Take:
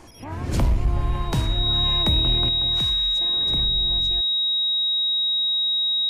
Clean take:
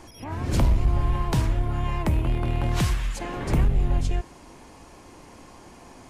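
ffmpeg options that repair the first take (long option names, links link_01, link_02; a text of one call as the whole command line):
ffmpeg -i in.wav -af "bandreject=frequency=3800:width=30,asetnsamples=nb_out_samples=441:pad=0,asendcmd='2.49 volume volume 8.5dB',volume=0dB" out.wav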